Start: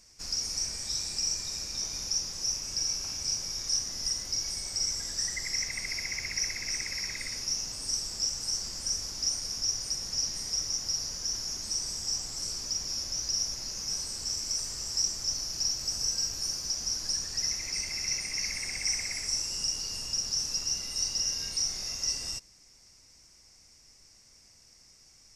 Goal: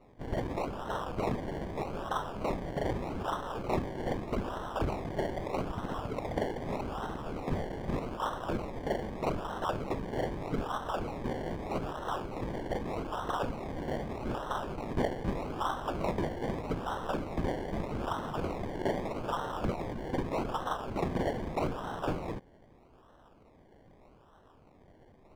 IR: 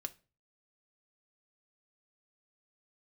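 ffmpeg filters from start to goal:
-af "acrusher=samples=27:mix=1:aa=0.000001:lfo=1:lforange=16.2:lforate=0.81,lowpass=f=1200:p=1"

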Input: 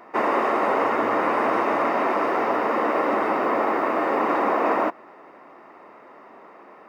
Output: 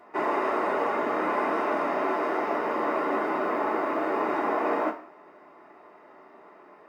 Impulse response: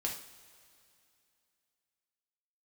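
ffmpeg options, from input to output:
-filter_complex "[1:a]atrim=start_sample=2205,afade=t=out:st=0.41:d=0.01,atrim=end_sample=18522,asetrate=79380,aresample=44100[s0];[0:a][s0]afir=irnorm=-1:irlink=0,volume=0.794"

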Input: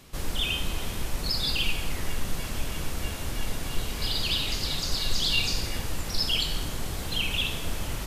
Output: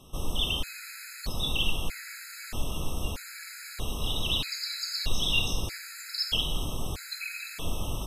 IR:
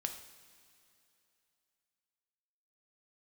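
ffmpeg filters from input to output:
-af "afftfilt=real='re*gt(sin(2*PI*0.79*pts/sr)*(1-2*mod(floor(b*sr/1024/1300),2)),0)':imag='im*gt(sin(2*PI*0.79*pts/sr)*(1-2*mod(floor(b*sr/1024/1300),2)),0)':win_size=1024:overlap=0.75"

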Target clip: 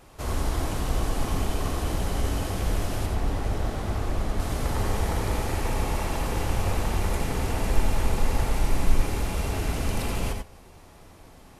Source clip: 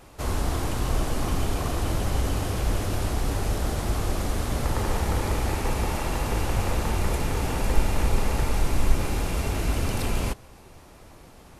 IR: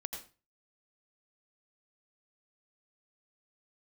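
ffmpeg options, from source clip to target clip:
-filter_complex "[0:a]asettb=1/sr,asplit=3[s0][s1][s2];[s0]atrim=end=3.064[s3];[s1]atrim=start=3.06:end=4.4,asetpts=PTS-STARTPTS,afade=t=in:d=0.004:c=qsin,afade=t=out:st=1.336:d=0.004:c=qsin,highshelf=f=4500:g=-9.5[s4];[s2]atrim=start=4.396[s5];[s3][s4]acrossfade=d=0.004:c1=hsin:c2=qsin[s6];[s6][s5]acrossfade=d=0.004:c1=qsin:c2=hsin[s7];[1:a]atrim=start_sample=2205,atrim=end_sample=4410[s8];[s7][s8]afir=irnorm=-1:irlink=0"

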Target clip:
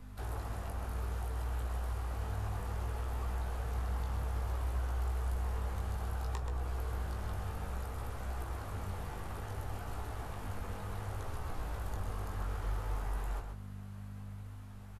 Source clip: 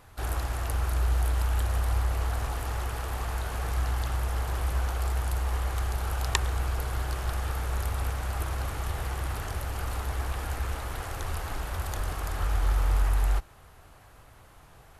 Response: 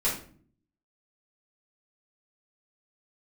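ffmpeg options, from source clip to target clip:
-filter_complex "[0:a]aeval=exprs='val(0)+0.01*(sin(2*PI*50*n/s)+sin(2*PI*2*50*n/s)/2+sin(2*PI*3*50*n/s)/3+sin(2*PI*4*50*n/s)/4+sin(2*PI*5*50*n/s)/5)':c=same,flanger=delay=16.5:depth=4.2:speed=0.61,acrossover=split=100|1200[s0][s1][s2];[s0]acompressor=threshold=0.0282:ratio=4[s3];[s1]acompressor=threshold=0.01:ratio=4[s4];[s2]acompressor=threshold=0.00251:ratio=4[s5];[s3][s4][s5]amix=inputs=3:normalize=0,aecho=1:1:130:0.447,asplit=2[s6][s7];[1:a]atrim=start_sample=2205[s8];[s7][s8]afir=irnorm=-1:irlink=0,volume=0.126[s9];[s6][s9]amix=inputs=2:normalize=0,volume=0.631"

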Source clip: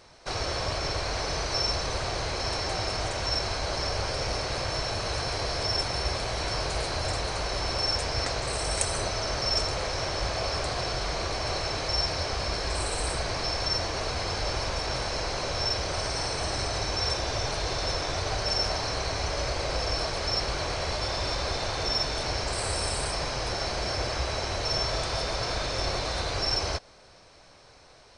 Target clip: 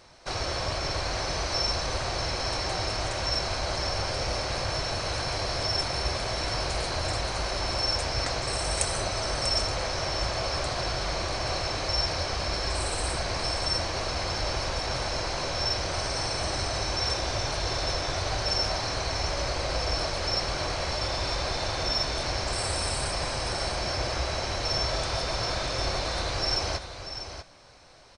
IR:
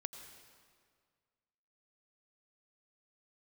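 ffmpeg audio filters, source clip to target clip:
-filter_complex "[0:a]bandreject=f=440:w=12,asplit=2[s0][s1];[s1]aecho=0:1:642:0.316[s2];[s0][s2]amix=inputs=2:normalize=0"

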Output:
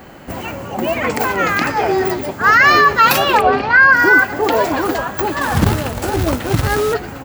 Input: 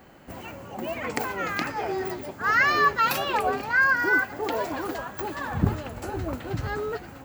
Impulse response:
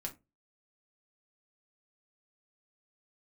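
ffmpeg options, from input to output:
-filter_complex "[0:a]asplit=3[s0][s1][s2];[s0]afade=t=out:st=3.4:d=0.02[s3];[s1]lowpass=f=4800:w=0.5412,lowpass=f=4800:w=1.3066,afade=t=in:st=3.4:d=0.02,afade=t=out:st=3.91:d=0.02[s4];[s2]afade=t=in:st=3.91:d=0.02[s5];[s3][s4][s5]amix=inputs=3:normalize=0,asettb=1/sr,asplit=3[s6][s7][s8];[s6]atrim=end=5.414[s9];[s7]atrim=start=5.41:end=6.94,asetpts=PTS-STARTPTS,afade=t=in:d=0.004:c=qsin,afade=t=out:st=1.526:d=0.004:c=qsin,acrusher=bits=2:mode=log:mix=0:aa=0.000001[s10];[s8]atrim=start=6.936[s11];[s9][s10]acrossfade=d=0.004:c1=hsin:c2=qsin[s12];[s12][s11]acrossfade=d=0.004:c1=qsin:c2=hsin,aecho=1:1:183:0.0708,alimiter=level_in=5.01:limit=0.891:release=50:level=0:latency=1,volume=0.891"

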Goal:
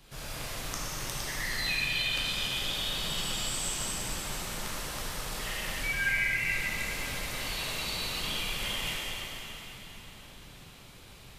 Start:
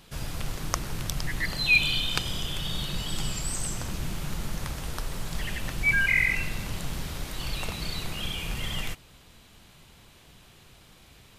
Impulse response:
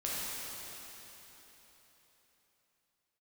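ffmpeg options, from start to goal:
-filter_complex "[0:a]acrossover=split=320|1700[s0][s1][s2];[s0]acompressor=threshold=0.00708:ratio=4[s3];[s1]acompressor=threshold=0.00708:ratio=4[s4];[s2]acompressor=threshold=0.0251:ratio=4[s5];[s3][s4][s5]amix=inputs=3:normalize=0[s6];[1:a]atrim=start_sample=2205[s7];[s6][s7]afir=irnorm=-1:irlink=0,volume=0.75"

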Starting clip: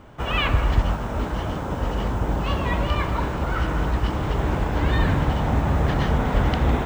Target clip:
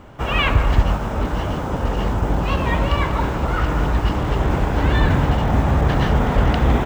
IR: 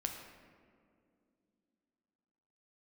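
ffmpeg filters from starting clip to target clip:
-af "asetrate=42845,aresample=44100,atempo=1.0293,volume=1.58"

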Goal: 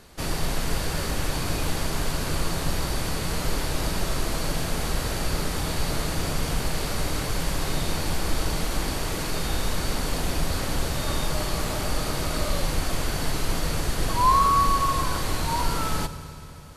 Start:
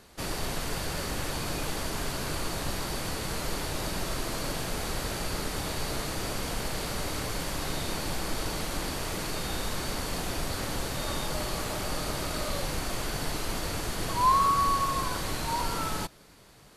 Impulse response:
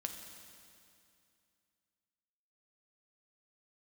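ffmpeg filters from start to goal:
-filter_complex "[0:a]asplit=2[s0][s1];[1:a]atrim=start_sample=2205,asetrate=36162,aresample=44100,lowshelf=f=130:g=10.5[s2];[s1][s2]afir=irnorm=-1:irlink=0,volume=0.841[s3];[s0][s3]amix=inputs=2:normalize=0,volume=0.841"

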